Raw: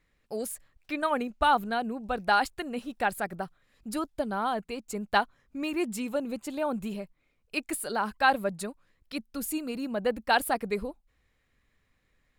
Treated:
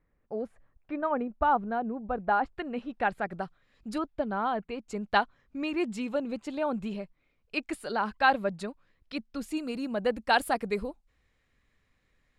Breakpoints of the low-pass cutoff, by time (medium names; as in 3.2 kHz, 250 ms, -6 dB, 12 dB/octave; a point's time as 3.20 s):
1.2 kHz
from 2.52 s 2.6 kHz
from 3.31 s 5.4 kHz
from 3.98 s 2.7 kHz
from 4.88 s 4.8 kHz
from 9.57 s 8.9 kHz